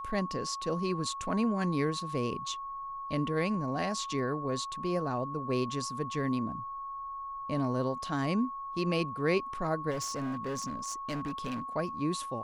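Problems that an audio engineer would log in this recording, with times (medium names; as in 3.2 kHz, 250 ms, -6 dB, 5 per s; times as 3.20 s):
whine 1.1 kHz -37 dBFS
9.90–11.62 s: clipped -31 dBFS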